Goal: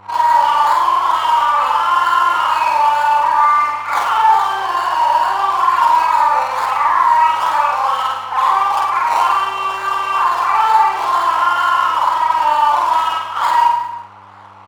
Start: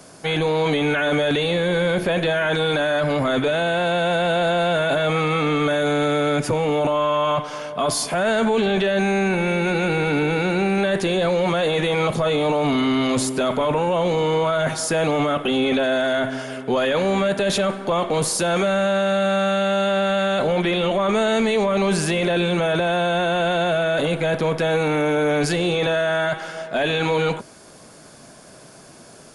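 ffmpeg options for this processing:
ffmpeg -i in.wav -filter_complex "[0:a]afftfilt=real='re':imag='-im':win_size=8192:overlap=0.75,highshelf=frequency=2100:gain=7.5,acrossover=split=600|1600[link_01][link_02][link_03];[link_03]acrusher=samples=42:mix=1:aa=0.000001:lfo=1:lforange=25.2:lforate=1.1[link_04];[link_01][link_02][link_04]amix=inputs=3:normalize=0,highpass=frequency=470:width_type=q:width=4.9,adynamicsmooth=sensitivity=4.5:basefreq=1800,asplit=2[link_05][link_06];[link_06]aecho=0:1:100|220|364|536.8|744.2:0.631|0.398|0.251|0.158|0.1[link_07];[link_05][link_07]amix=inputs=2:normalize=0,aeval=exprs='val(0)+0.00355*(sin(2*PI*50*n/s)+sin(2*PI*2*50*n/s)/2+sin(2*PI*3*50*n/s)/3+sin(2*PI*4*50*n/s)/4+sin(2*PI*5*50*n/s)/5)':channel_layout=same,asetrate=88200,aresample=44100" out.wav

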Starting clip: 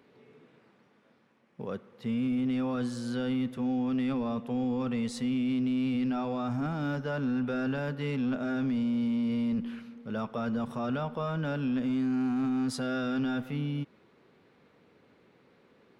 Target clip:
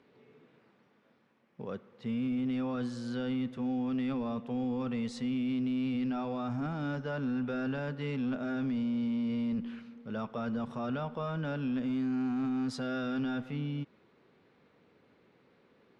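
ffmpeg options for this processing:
ffmpeg -i in.wav -af "lowpass=6500,volume=-3dB" out.wav

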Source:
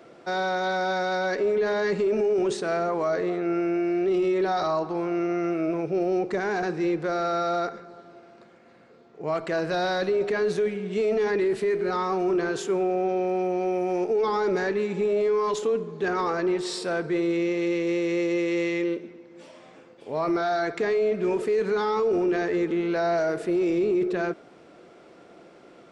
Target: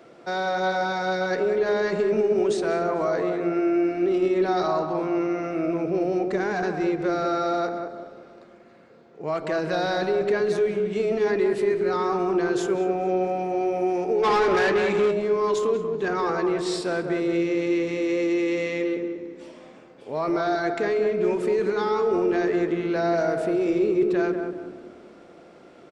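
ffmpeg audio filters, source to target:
ffmpeg -i in.wav -filter_complex "[0:a]asplit=2[link_01][link_02];[link_02]adelay=189,lowpass=frequency=1200:poles=1,volume=-4.5dB,asplit=2[link_03][link_04];[link_04]adelay=189,lowpass=frequency=1200:poles=1,volume=0.46,asplit=2[link_05][link_06];[link_06]adelay=189,lowpass=frequency=1200:poles=1,volume=0.46,asplit=2[link_07][link_08];[link_08]adelay=189,lowpass=frequency=1200:poles=1,volume=0.46,asplit=2[link_09][link_10];[link_10]adelay=189,lowpass=frequency=1200:poles=1,volume=0.46,asplit=2[link_11][link_12];[link_12]adelay=189,lowpass=frequency=1200:poles=1,volume=0.46[link_13];[link_03][link_05][link_07][link_09][link_11][link_13]amix=inputs=6:normalize=0[link_14];[link_01][link_14]amix=inputs=2:normalize=0,asplit=3[link_15][link_16][link_17];[link_15]afade=type=out:start_time=14.22:duration=0.02[link_18];[link_16]asplit=2[link_19][link_20];[link_20]highpass=frequency=720:poles=1,volume=18dB,asoftclip=type=tanh:threshold=-13.5dB[link_21];[link_19][link_21]amix=inputs=2:normalize=0,lowpass=frequency=5600:poles=1,volume=-6dB,afade=type=in:start_time=14.22:duration=0.02,afade=type=out:start_time=15.1:duration=0.02[link_22];[link_17]afade=type=in:start_time=15.1:duration=0.02[link_23];[link_18][link_22][link_23]amix=inputs=3:normalize=0,asplit=2[link_24][link_25];[link_25]asplit=4[link_26][link_27][link_28][link_29];[link_26]adelay=221,afreqshift=-35,volume=-23dB[link_30];[link_27]adelay=442,afreqshift=-70,volume=-27.4dB[link_31];[link_28]adelay=663,afreqshift=-105,volume=-31.9dB[link_32];[link_29]adelay=884,afreqshift=-140,volume=-36.3dB[link_33];[link_30][link_31][link_32][link_33]amix=inputs=4:normalize=0[link_34];[link_24][link_34]amix=inputs=2:normalize=0" out.wav

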